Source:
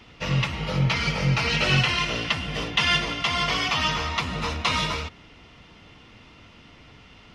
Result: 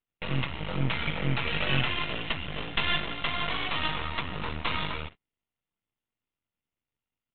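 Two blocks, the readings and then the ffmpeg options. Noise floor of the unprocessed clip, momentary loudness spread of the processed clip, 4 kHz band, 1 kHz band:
-51 dBFS, 6 LU, -7.0 dB, -6.0 dB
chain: -af "aresample=8000,aeval=exprs='max(val(0),0)':c=same,aresample=44100,agate=range=-38dB:threshold=-40dB:ratio=16:detection=peak,volume=-1.5dB"

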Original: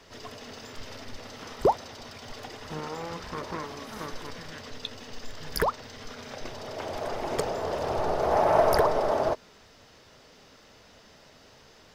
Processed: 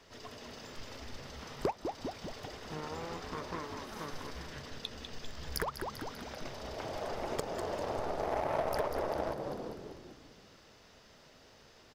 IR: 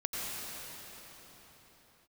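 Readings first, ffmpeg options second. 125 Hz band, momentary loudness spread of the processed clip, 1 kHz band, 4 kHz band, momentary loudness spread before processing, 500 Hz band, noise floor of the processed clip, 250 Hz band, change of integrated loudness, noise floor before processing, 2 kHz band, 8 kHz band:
-5.5 dB, 23 LU, -10.0 dB, -5.5 dB, 19 LU, -9.5 dB, -60 dBFS, -5.0 dB, -10.5 dB, -55 dBFS, -6.5 dB, -5.5 dB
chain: -filter_complex "[0:a]asplit=8[a][b][c][d][e][f][g][h];[b]adelay=197,afreqshift=-72,volume=-7dB[i];[c]adelay=394,afreqshift=-144,volume=-12.2dB[j];[d]adelay=591,afreqshift=-216,volume=-17.4dB[k];[e]adelay=788,afreqshift=-288,volume=-22.6dB[l];[f]adelay=985,afreqshift=-360,volume=-27.8dB[m];[g]adelay=1182,afreqshift=-432,volume=-33dB[n];[h]adelay=1379,afreqshift=-504,volume=-38.2dB[o];[a][i][j][k][l][m][n][o]amix=inputs=8:normalize=0,aeval=exprs='0.447*(cos(1*acos(clip(val(0)/0.447,-1,1)))-cos(1*PI/2))+0.0316*(cos(7*acos(clip(val(0)/0.447,-1,1)))-cos(7*PI/2))':c=same,acompressor=threshold=-33dB:ratio=3"

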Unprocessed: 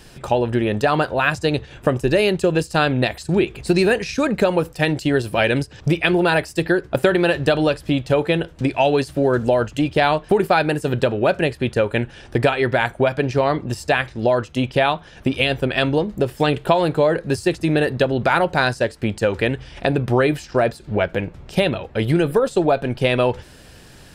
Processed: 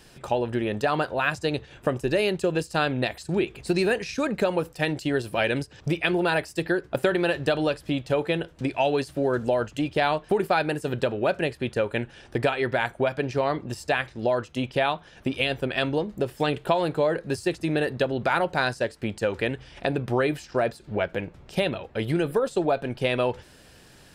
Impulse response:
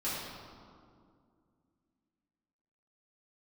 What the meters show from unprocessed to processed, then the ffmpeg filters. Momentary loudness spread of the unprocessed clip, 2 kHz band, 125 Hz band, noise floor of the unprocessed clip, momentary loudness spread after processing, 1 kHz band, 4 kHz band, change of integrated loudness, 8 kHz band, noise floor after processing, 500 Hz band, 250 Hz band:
5 LU, -6.0 dB, -8.5 dB, -44 dBFS, 5 LU, -6.0 dB, -6.0 dB, -6.5 dB, -6.0 dB, -52 dBFS, -6.5 dB, -7.0 dB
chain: -af "lowshelf=f=130:g=-5.5,volume=-6dB"

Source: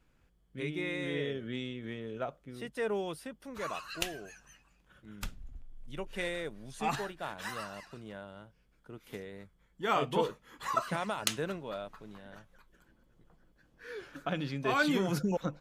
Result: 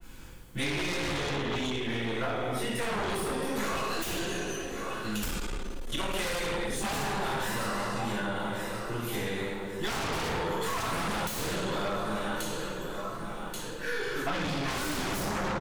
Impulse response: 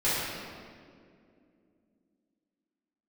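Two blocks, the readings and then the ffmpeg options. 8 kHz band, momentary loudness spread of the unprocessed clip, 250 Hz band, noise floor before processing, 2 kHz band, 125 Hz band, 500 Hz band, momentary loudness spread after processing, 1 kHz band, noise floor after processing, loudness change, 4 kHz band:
+8.0 dB, 20 LU, +4.0 dB, -69 dBFS, +5.5 dB, +5.0 dB, +3.5 dB, 6 LU, +4.5 dB, -38 dBFS, +3.5 dB, +7.5 dB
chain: -filter_complex "[0:a]aeval=exprs='if(lt(val(0),0),0.708*val(0),val(0))':c=same,equalizer=f=640:t=o:w=0.34:g=-5,crystalizer=i=2.5:c=0,asplit=2[a][b];[b]aecho=0:1:1133|2266|3399:0.112|0.0404|0.0145[c];[a][c]amix=inputs=2:normalize=0[d];[1:a]atrim=start_sample=2205,asetrate=74970,aresample=44100[e];[d][e]afir=irnorm=-1:irlink=0,asplit=2[f][g];[g]aeval=exprs='0.447*sin(PI/2*10*val(0)/0.447)':c=same,volume=-5.5dB[h];[f][h]amix=inputs=2:normalize=0,acrossover=split=190|730[i][j][k];[i]acompressor=threshold=-30dB:ratio=4[l];[j]acompressor=threshold=-32dB:ratio=4[m];[k]acompressor=threshold=-26dB:ratio=4[n];[l][m][n]amix=inputs=3:normalize=0,adynamicequalizer=threshold=0.00891:dfrequency=2200:dqfactor=0.7:tfrequency=2200:tqfactor=0.7:attack=5:release=100:ratio=0.375:range=2.5:mode=cutabove:tftype=highshelf,volume=-6dB"

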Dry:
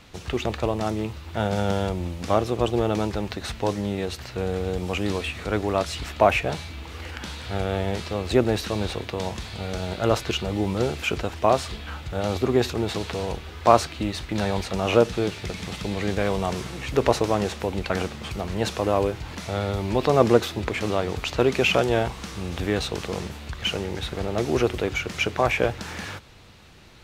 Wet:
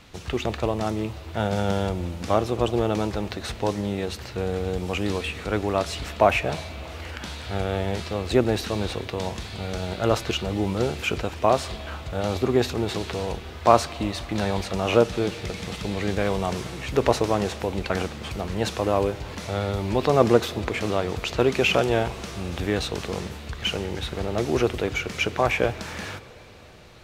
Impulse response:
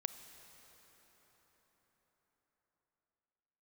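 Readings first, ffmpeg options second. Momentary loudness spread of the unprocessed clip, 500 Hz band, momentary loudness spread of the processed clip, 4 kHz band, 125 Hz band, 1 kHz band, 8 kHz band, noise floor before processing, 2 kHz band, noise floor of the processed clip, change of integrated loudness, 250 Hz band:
11 LU, 0.0 dB, 11 LU, 0.0 dB, 0.0 dB, 0.0 dB, 0.0 dB, -40 dBFS, 0.0 dB, -39 dBFS, 0.0 dB, 0.0 dB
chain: -filter_complex "[0:a]asplit=2[a][b];[1:a]atrim=start_sample=2205[c];[b][c]afir=irnorm=-1:irlink=0,volume=-3.5dB[d];[a][d]amix=inputs=2:normalize=0,volume=-4dB"

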